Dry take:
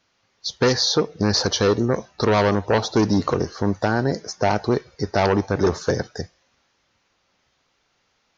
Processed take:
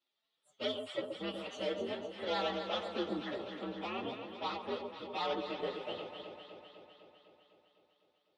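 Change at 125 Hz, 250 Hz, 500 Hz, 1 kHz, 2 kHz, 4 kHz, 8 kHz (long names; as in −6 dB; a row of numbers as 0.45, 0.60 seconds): −29.5 dB, −20.0 dB, −17.0 dB, −15.0 dB, −17.0 dB, −15.5 dB, can't be measured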